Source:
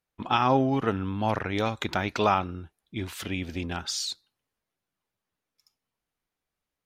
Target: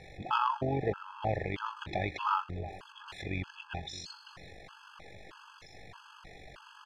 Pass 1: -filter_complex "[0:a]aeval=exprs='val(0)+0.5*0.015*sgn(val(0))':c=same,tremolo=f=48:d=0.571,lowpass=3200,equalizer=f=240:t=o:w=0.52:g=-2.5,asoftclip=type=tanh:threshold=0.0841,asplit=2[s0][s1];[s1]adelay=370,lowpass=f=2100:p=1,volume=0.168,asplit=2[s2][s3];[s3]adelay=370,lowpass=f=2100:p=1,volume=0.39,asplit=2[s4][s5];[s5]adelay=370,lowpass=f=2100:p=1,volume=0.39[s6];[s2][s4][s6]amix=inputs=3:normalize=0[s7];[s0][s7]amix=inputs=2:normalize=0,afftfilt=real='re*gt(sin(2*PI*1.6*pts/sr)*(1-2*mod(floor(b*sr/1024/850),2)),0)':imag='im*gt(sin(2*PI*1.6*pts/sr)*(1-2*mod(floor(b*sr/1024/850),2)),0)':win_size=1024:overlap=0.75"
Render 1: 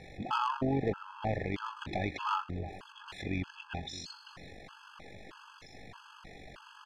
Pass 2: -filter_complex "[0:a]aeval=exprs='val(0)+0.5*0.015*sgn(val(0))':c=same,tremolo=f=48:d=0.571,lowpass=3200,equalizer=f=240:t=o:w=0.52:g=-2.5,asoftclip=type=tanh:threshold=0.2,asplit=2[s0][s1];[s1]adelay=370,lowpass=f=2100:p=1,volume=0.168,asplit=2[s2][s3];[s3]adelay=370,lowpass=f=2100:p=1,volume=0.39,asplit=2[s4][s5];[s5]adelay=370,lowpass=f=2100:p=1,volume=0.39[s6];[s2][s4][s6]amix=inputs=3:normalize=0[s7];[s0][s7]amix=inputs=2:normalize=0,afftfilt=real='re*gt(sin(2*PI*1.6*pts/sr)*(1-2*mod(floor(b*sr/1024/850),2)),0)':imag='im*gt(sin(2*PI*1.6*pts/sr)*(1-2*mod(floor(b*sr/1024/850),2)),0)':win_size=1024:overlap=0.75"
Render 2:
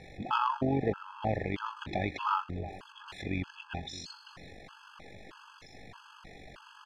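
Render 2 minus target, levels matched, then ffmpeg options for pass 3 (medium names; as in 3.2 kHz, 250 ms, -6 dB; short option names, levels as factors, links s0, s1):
250 Hz band +4.5 dB
-filter_complex "[0:a]aeval=exprs='val(0)+0.5*0.015*sgn(val(0))':c=same,tremolo=f=48:d=0.571,lowpass=3200,equalizer=f=240:t=o:w=0.52:g=-12.5,asoftclip=type=tanh:threshold=0.2,asplit=2[s0][s1];[s1]adelay=370,lowpass=f=2100:p=1,volume=0.168,asplit=2[s2][s3];[s3]adelay=370,lowpass=f=2100:p=1,volume=0.39,asplit=2[s4][s5];[s5]adelay=370,lowpass=f=2100:p=1,volume=0.39[s6];[s2][s4][s6]amix=inputs=3:normalize=0[s7];[s0][s7]amix=inputs=2:normalize=0,afftfilt=real='re*gt(sin(2*PI*1.6*pts/sr)*(1-2*mod(floor(b*sr/1024/850),2)),0)':imag='im*gt(sin(2*PI*1.6*pts/sr)*(1-2*mod(floor(b*sr/1024/850),2)),0)':win_size=1024:overlap=0.75"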